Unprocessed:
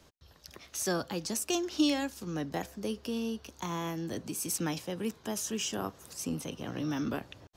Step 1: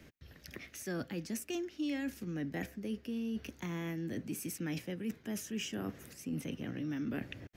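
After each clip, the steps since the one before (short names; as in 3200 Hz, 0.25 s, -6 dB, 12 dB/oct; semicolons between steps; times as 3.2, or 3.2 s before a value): graphic EQ 125/250/1000/2000/4000/8000 Hz +3/+6/-11/+10/-6/-6 dB; reverse; compressor 4:1, threshold -39 dBFS, peak gain reduction 17.5 dB; reverse; gain +2 dB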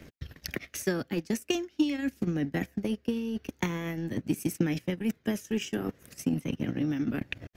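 transient shaper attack +10 dB, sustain -12 dB; phaser 0.44 Hz, delay 2.7 ms, feedback 22%; gain +5 dB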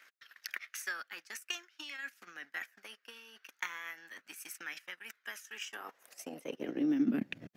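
high-pass sweep 1400 Hz -> 180 Hz, 5.53–7.4; gain -6 dB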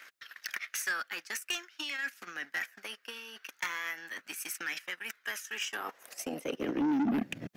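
soft clip -34.5 dBFS, distortion -7 dB; gain +8.5 dB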